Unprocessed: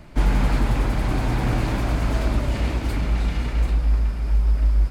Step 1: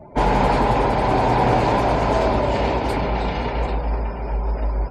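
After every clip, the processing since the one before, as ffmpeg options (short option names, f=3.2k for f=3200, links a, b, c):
-af "highpass=f=150:p=1,afftdn=nr=30:nf=-48,superequalizer=7b=2.51:8b=2.51:9b=3.16,volume=5dB"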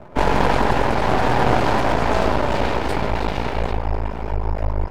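-af "aeval=exprs='max(val(0),0)':c=same,volume=4dB"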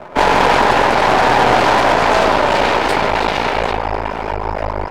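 -filter_complex "[0:a]asplit=2[a][b];[b]highpass=f=720:p=1,volume=18dB,asoftclip=type=tanh:threshold=-1dB[c];[a][c]amix=inputs=2:normalize=0,lowpass=f=7.3k:p=1,volume=-6dB"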